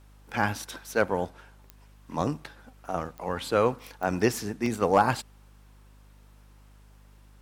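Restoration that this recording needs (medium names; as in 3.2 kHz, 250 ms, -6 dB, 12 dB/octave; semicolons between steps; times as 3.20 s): clip repair -10 dBFS; de-click; de-hum 50.6 Hz, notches 5; interpolate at 2.44/3.79/4.66 s, 2.6 ms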